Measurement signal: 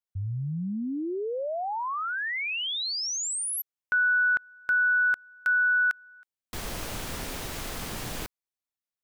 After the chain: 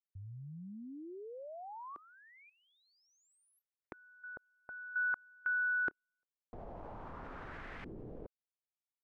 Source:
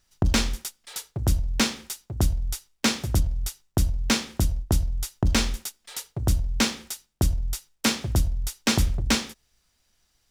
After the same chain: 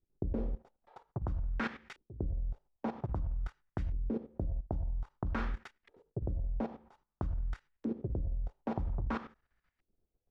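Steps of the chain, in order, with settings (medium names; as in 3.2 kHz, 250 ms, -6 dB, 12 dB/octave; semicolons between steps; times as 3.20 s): LFO low-pass saw up 0.51 Hz 350–2100 Hz; level held to a coarse grid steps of 14 dB; trim -5 dB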